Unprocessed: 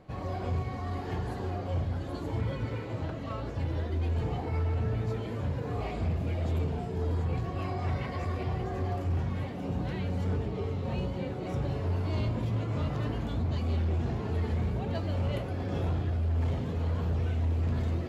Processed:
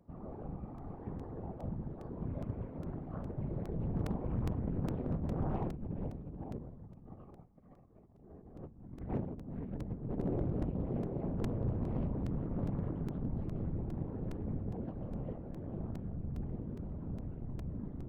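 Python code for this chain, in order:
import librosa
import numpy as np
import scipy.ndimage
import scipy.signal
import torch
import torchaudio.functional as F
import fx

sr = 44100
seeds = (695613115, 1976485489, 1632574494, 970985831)

y = fx.doppler_pass(x, sr, speed_mps=18, closest_m=7.2, pass_at_s=7.78)
y = scipy.signal.sosfilt(scipy.signal.butter(2, 1000.0, 'lowpass', fs=sr, output='sos'), y)
y = fx.peak_eq(y, sr, hz=110.0, db=8.5, octaves=3.0)
y = y + 0.49 * np.pad(y, (int(5.3 * sr / 1000.0), 0))[:len(y)]
y = fx.over_compress(y, sr, threshold_db=-43.0, ratio=-0.5)
y = fx.whisperise(y, sr, seeds[0])
y = np.clip(y, -10.0 ** (-31.0 / 20.0), 10.0 ** (-31.0 / 20.0))
y = fx.buffer_crackle(y, sr, first_s=0.78, period_s=0.41, block=128, kind='repeat')
y = fx.doppler_dist(y, sr, depth_ms=0.64)
y = y * 10.0 ** (5.5 / 20.0)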